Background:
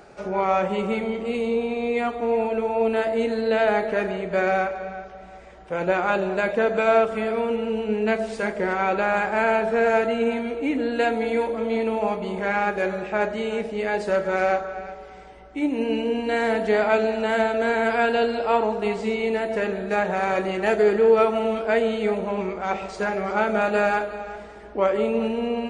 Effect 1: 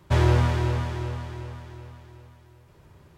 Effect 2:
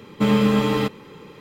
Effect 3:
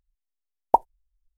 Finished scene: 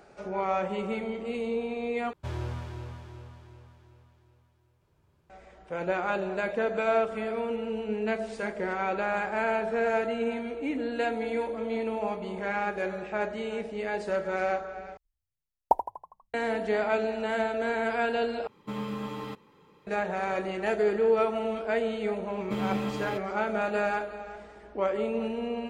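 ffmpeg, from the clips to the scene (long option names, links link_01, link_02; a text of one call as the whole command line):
ffmpeg -i bed.wav -i cue0.wav -i cue1.wav -i cue2.wav -filter_complex "[2:a]asplit=2[link_01][link_02];[0:a]volume=-7dB[link_03];[1:a]bandreject=frequency=1900:width=16[link_04];[3:a]asplit=7[link_05][link_06][link_07][link_08][link_09][link_10][link_11];[link_06]adelay=81,afreqshift=31,volume=-11dB[link_12];[link_07]adelay=162,afreqshift=62,volume=-16.7dB[link_13];[link_08]adelay=243,afreqshift=93,volume=-22.4dB[link_14];[link_09]adelay=324,afreqshift=124,volume=-28dB[link_15];[link_10]adelay=405,afreqshift=155,volume=-33.7dB[link_16];[link_11]adelay=486,afreqshift=186,volume=-39.4dB[link_17];[link_05][link_12][link_13][link_14][link_15][link_16][link_17]amix=inputs=7:normalize=0[link_18];[link_01]equalizer=frequency=980:width_type=o:width=0.64:gain=6.5[link_19];[link_03]asplit=4[link_20][link_21][link_22][link_23];[link_20]atrim=end=2.134[link_24];[link_04]atrim=end=3.17,asetpts=PTS-STARTPTS,volume=-15dB[link_25];[link_21]atrim=start=5.296:end=14.974[link_26];[link_18]atrim=end=1.37,asetpts=PTS-STARTPTS,volume=-5.5dB[link_27];[link_22]atrim=start=16.336:end=18.474[link_28];[link_19]atrim=end=1.4,asetpts=PTS-STARTPTS,volume=-17.5dB[link_29];[link_23]atrim=start=19.866[link_30];[link_02]atrim=end=1.4,asetpts=PTS-STARTPTS,volume=-13.5dB,afade=type=in:duration=0.004:curve=hsin,afade=type=out:start_time=1.396:duration=0.004:curve=hsin,adelay=22300[link_31];[link_24][link_25]acrossfade=duration=0.004:curve1=hsin:curve2=hsin[link_32];[link_32][link_26]acrossfade=duration=0.004:curve1=hsin:curve2=hsin[link_33];[link_33][link_27]acrossfade=duration=0.004:curve1=hsin:curve2=hsin[link_34];[link_34][link_28]acrossfade=duration=0.004:curve1=hsin:curve2=hsin[link_35];[link_35][link_29]acrossfade=duration=0.004:curve1=hsin:curve2=hsin[link_36];[link_36][link_30]acrossfade=duration=0.004:curve1=hsin:curve2=hsin[link_37];[link_37][link_31]amix=inputs=2:normalize=0" out.wav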